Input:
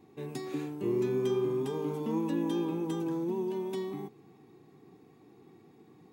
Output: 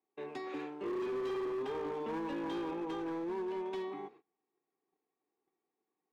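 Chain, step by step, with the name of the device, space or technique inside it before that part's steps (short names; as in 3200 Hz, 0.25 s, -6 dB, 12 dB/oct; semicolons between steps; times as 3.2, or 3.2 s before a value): walkie-talkie (BPF 500–2700 Hz; hard clip -37 dBFS, distortion -12 dB; gate -58 dBFS, range -27 dB); gain +3 dB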